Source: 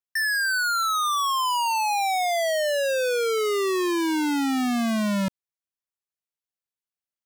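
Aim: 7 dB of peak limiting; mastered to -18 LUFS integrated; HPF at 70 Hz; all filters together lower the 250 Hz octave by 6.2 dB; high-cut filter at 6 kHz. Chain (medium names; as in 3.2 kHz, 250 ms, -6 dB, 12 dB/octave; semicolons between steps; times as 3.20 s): high-pass 70 Hz; low-pass 6 kHz; peaking EQ 250 Hz -8 dB; trim +12.5 dB; peak limiter -13.5 dBFS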